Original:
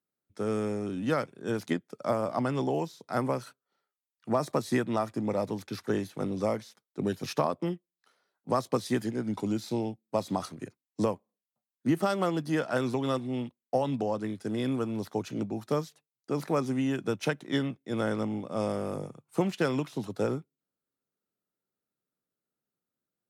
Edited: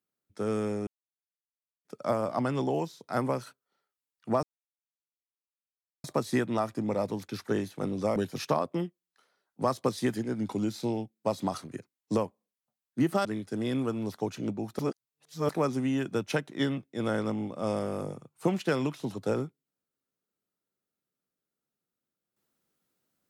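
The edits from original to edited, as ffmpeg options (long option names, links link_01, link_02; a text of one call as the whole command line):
ffmpeg -i in.wav -filter_complex "[0:a]asplit=8[link_01][link_02][link_03][link_04][link_05][link_06][link_07][link_08];[link_01]atrim=end=0.87,asetpts=PTS-STARTPTS,afade=type=out:start_time=0.866:duration=0.004:curve=hsin[link_09];[link_02]atrim=start=0.87:end=1.85,asetpts=PTS-STARTPTS,volume=0[link_10];[link_03]atrim=start=1.85:end=4.43,asetpts=PTS-STARTPTS,afade=type=in:duration=0.004:curve=hsin,afade=type=out:start_time=2.576:duration=0.004:curve=hsin,apad=pad_dur=1.61[link_11];[link_04]atrim=start=4.43:end=6.552,asetpts=PTS-STARTPTS,afade=type=in:duration=0.004:curve=hsin[link_12];[link_05]atrim=start=7.038:end=12.132[link_13];[link_06]atrim=start=14.178:end=15.722[link_14];[link_07]atrim=start=15.718:end=16.422,asetpts=PTS-STARTPTS,areverse[link_15];[link_08]atrim=start=16.418[link_16];[link_09][link_10][link_11][link_12]concat=n=4:v=0:a=1[link_17];[link_17][link_13]acrossfade=duration=0.004:curve1=hsin:curve2=hsin[link_18];[link_18][link_14]acrossfade=duration=0.004:curve1=hsin:curve2=hsin[link_19];[link_19][link_15]acrossfade=duration=0.004:curve1=hsin:curve2=hsin[link_20];[link_20][link_16]acrossfade=duration=0.004:curve1=hsin:curve2=hsin" out.wav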